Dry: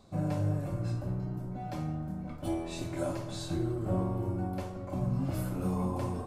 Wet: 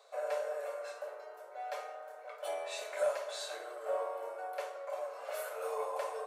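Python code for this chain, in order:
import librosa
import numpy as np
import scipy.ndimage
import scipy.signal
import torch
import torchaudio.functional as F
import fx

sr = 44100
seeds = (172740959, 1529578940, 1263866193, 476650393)

p1 = scipy.signal.sosfilt(scipy.signal.cheby1(6, 6, 430.0, 'highpass', fs=sr, output='sos'), x)
p2 = fx.notch(p1, sr, hz=5000.0, q=18.0)
p3 = np.clip(p2, -10.0 ** (-34.0 / 20.0), 10.0 ** (-34.0 / 20.0))
p4 = p2 + (p3 * 10.0 ** (-8.0 / 20.0))
y = p4 * 10.0 ** (3.0 / 20.0)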